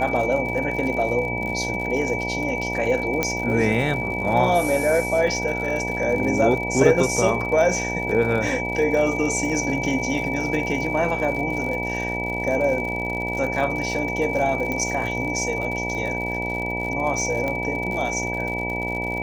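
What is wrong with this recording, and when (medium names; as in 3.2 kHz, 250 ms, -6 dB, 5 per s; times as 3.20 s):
buzz 60 Hz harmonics 16 -29 dBFS
crackle 82 per s -29 dBFS
whine 2.3 kHz -27 dBFS
3.23 s: pop -6 dBFS
14.72 s: pop -13 dBFS
17.48 s: pop -14 dBFS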